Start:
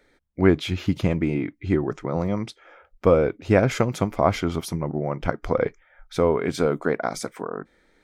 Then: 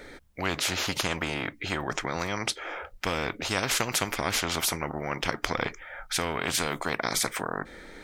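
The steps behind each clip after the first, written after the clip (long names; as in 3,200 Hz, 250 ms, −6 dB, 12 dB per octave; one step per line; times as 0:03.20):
every bin compressed towards the loudest bin 4 to 1
level −3 dB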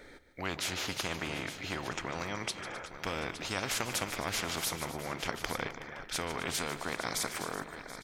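multi-tap delay 148/260/372/730/864 ms −13/−16.5/−16/−18/−11.5 dB
level −7 dB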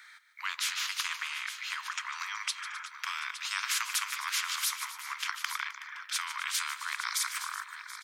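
Butterworth high-pass 1,000 Hz 72 dB per octave
level +3.5 dB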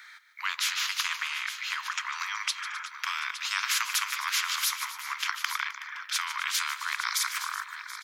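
parametric band 8,600 Hz −8 dB 0.25 octaves
level +4 dB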